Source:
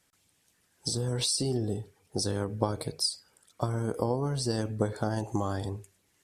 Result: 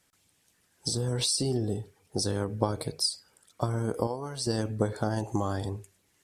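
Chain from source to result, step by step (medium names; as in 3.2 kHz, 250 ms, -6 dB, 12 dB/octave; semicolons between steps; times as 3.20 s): 4.07–4.47 s: bass shelf 460 Hz -12 dB; trim +1 dB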